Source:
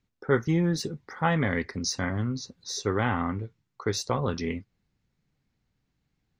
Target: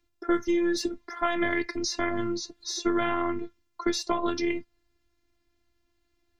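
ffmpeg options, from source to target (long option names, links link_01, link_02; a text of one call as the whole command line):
ffmpeg -i in.wav -filter_complex "[0:a]afftfilt=real='hypot(re,im)*cos(PI*b)':imag='0':win_size=512:overlap=0.75,acrossover=split=83|4200[link_01][link_02][link_03];[link_01]acompressor=threshold=-44dB:ratio=4[link_04];[link_02]acompressor=threshold=-30dB:ratio=4[link_05];[link_03]acompressor=threshold=-43dB:ratio=4[link_06];[link_04][link_05][link_06]amix=inputs=3:normalize=0,volume=8dB" out.wav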